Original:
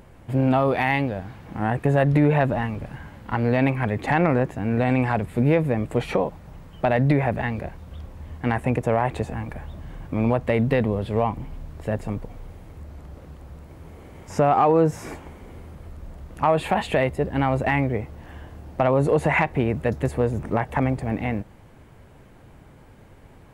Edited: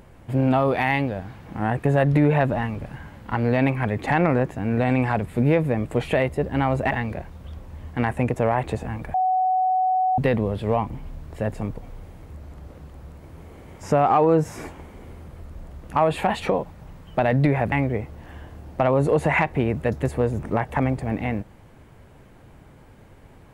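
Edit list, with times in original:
6.08–7.38 swap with 16.89–17.72
9.61–10.65 bleep 746 Hz -17.5 dBFS

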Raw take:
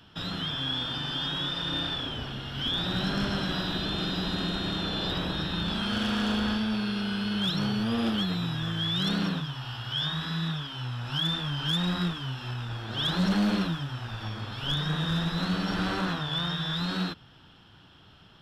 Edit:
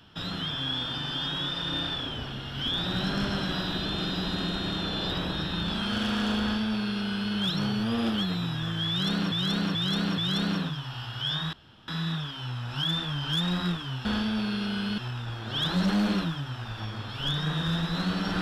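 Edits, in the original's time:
6.4–7.33 copy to 12.41
8.89–9.32 loop, 4 plays
10.24 insert room tone 0.35 s

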